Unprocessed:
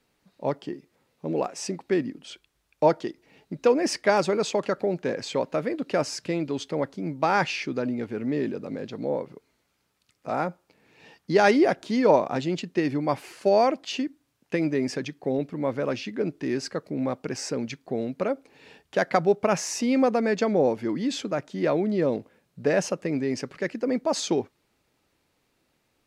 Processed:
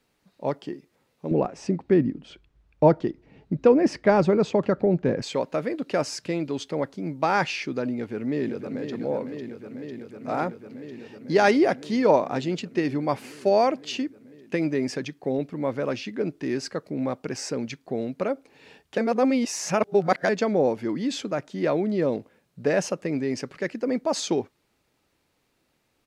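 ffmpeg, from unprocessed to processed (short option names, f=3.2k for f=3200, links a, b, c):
-filter_complex "[0:a]asettb=1/sr,asplit=3[a][b][c];[a]atrim=end=1.314[d];[b]atrim=start=1.31:end=5.22,asetpts=PTS-STARTPTS,afade=t=in:d=0.004:c=qsin,afade=t=out:st=3.906:d=0.004:c=qsin,aemphasis=mode=reproduction:type=riaa[e];[c]atrim=start=5.216[f];[d][e]acrossfade=d=0.004:c1=hsin:c2=qsin[g];[g][f]acrossfade=d=0.004:c1=qsin:c2=hsin,asplit=2[h][i];[i]afade=t=in:st=7.92:d=0.01,afade=t=out:st=8.91:d=0.01,aecho=0:1:500|1000|1500|2000|2500|3000|3500|4000|4500|5000|5500|6000:0.398107|0.338391|0.287632|0.244488|0.207814|0.176642|0.150146|0.127624|0.10848|0.0922084|0.0783771|0.0666205[j];[h][j]amix=inputs=2:normalize=0,asplit=3[k][l][m];[k]atrim=end=18.982[n];[l]atrim=start=18.978:end=20.292,asetpts=PTS-STARTPTS,areverse[o];[m]atrim=start=20.288[p];[n][o]acrossfade=d=0.004:c1=hsin:c2=hsin[q];[q][p]acrossfade=d=0.004:c1=hsin:c2=hsin"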